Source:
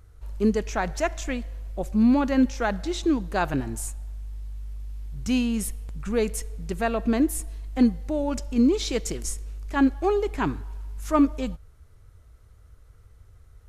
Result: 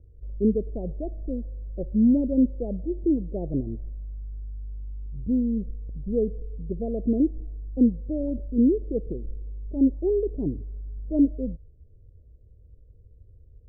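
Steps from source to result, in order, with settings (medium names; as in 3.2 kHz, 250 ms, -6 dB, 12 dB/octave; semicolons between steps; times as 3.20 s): steep low-pass 560 Hz 48 dB/octave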